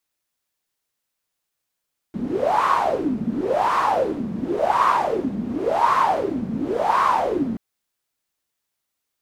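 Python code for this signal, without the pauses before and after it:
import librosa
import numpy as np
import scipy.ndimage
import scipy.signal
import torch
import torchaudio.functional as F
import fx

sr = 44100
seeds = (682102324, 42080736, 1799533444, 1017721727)

y = fx.wind(sr, seeds[0], length_s=5.43, low_hz=210.0, high_hz=1100.0, q=9.3, gusts=5, swing_db=8.0)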